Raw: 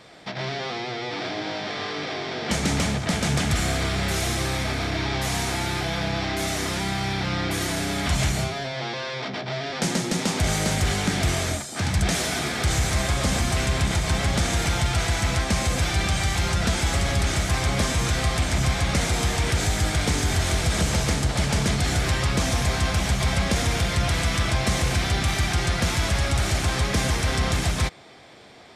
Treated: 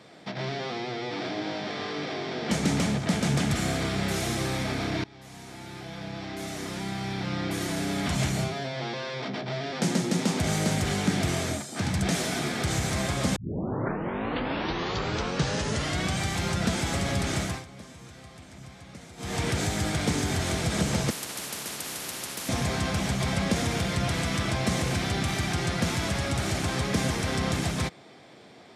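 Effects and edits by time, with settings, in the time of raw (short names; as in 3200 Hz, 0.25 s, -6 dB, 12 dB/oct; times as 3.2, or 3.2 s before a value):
5.04–8.2 fade in, from -23.5 dB
13.36 tape start 2.82 s
17.43–19.39 dip -19 dB, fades 0.22 s
21.1–22.49 spectral compressor 10:1
whole clip: HPF 160 Hz 12 dB/oct; low shelf 350 Hz +9.5 dB; gain -5 dB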